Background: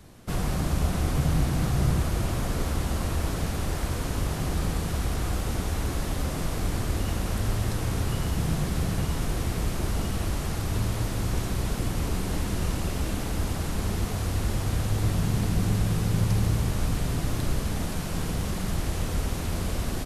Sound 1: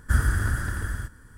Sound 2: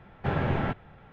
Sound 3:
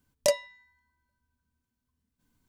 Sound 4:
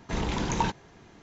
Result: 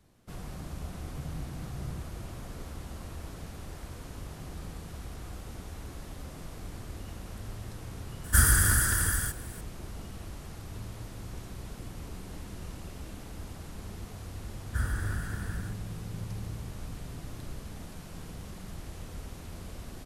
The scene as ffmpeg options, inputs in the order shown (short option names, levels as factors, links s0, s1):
-filter_complex "[1:a]asplit=2[s0][s1];[0:a]volume=0.2[s2];[s0]crystalizer=i=6:c=0,atrim=end=1.37,asetpts=PTS-STARTPTS,volume=0.794,afade=t=in:d=0.004:c=hsin,afade=t=out:st=1.366:d=0.004:c=hsin,adelay=8240[s3];[s1]atrim=end=1.37,asetpts=PTS-STARTPTS,volume=0.355,afade=t=in:d=0.004:c=hsin,afade=t=out:st=1.366:d=0.004:c=hsin,adelay=14650[s4];[s2][s3][s4]amix=inputs=3:normalize=0"